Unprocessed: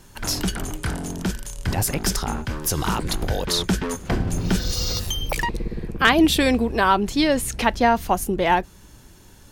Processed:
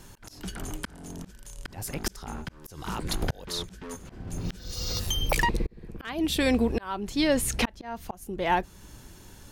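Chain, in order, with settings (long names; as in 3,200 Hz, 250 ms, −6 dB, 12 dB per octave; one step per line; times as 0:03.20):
volume swells 797 ms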